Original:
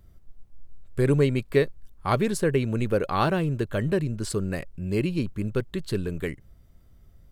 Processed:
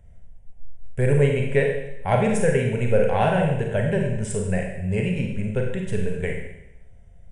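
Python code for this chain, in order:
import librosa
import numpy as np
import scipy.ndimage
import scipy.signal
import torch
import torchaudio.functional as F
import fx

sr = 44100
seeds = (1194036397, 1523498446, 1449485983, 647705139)

y = fx.brickwall_lowpass(x, sr, high_hz=10000.0)
y = fx.peak_eq(y, sr, hz=380.0, db=4.5, octaves=1.4)
y = fx.fixed_phaser(y, sr, hz=1200.0, stages=6)
y = fx.rev_schroeder(y, sr, rt60_s=0.86, comb_ms=33, drr_db=1.0)
y = y * librosa.db_to_amplitude(3.5)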